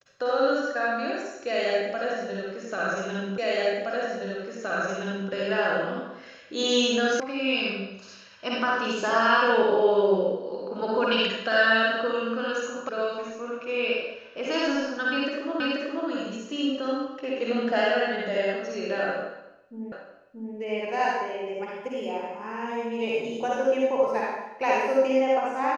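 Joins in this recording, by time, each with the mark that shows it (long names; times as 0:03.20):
0:03.38: the same again, the last 1.92 s
0:07.20: cut off before it has died away
0:12.89: cut off before it has died away
0:15.60: the same again, the last 0.48 s
0:19.92: the same again, the last 0.63 s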